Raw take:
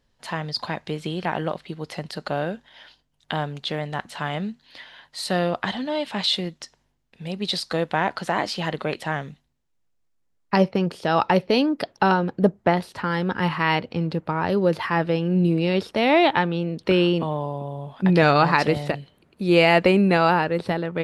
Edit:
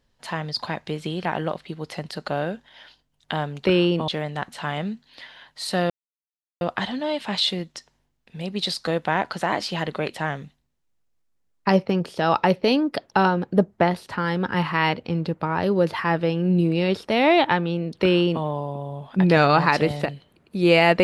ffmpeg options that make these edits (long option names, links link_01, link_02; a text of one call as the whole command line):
ffmpeg -i in.wav -filter_complex "[0:a]asplit=4[link_01][link_02][link_03][link_04];[link_01]atrim=end=3.652[link_05];[link_02]atrim=start=16.868:end=17.302[link_06];[link_03]atrim=start=3.648:end=5.47,asetpts=PTS-STARTPTS,afade=type=out:start_time=1.818:duration=0.004:curve=hsin,apad=pad_dur=0.71[link_07];[link_04]atrim=start=5.47,asetpts=PTS-STARTPTS,afade=type=in:duration=0.004:curve=hsin[link_08];[link_05][link_06]acrossfade=duration=0.004:curve1=hsin:curve2=hsin[link_09];[link_07][link_08]concat=n=2:v=0:a=1[link_10];[link_09][link_10]acrossfade=duration=0.004:curve1=hsin:curve2=hsin" out.wav